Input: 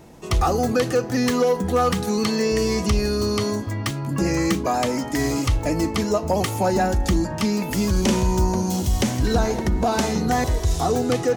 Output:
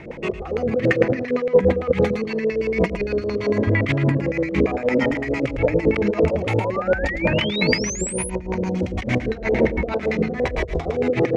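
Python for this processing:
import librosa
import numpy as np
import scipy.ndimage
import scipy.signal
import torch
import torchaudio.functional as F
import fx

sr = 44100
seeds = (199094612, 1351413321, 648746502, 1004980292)

p1 = fx.high_shelf(x, sr, hz=4000.0, db=9.5)
p2 = fx.over_compress(p1, sr, threshold_db=-25.0, ratio=-0.5)
p3 = fx.filter_lfo_lowpass(p2, sr, shape='square', hz=8.8, low_hz=520.0, high_hz=2200.0, q=5.9)
p4 = p3 + fx.echo_single(p3, sr, ms=109, db=-9.0, dry=0)
p5 = fx.spec_paint(p4, sr, seeds[0], shape='rise', start_s=6.49, length_s=1.81, low_hz=770.0, high_hz=11000.0, level_db=-30.0)
p6 = fx.rotary(p5, sr, hz=6.3)
y = p6 * 10.0 ** (3.0 / 20.0)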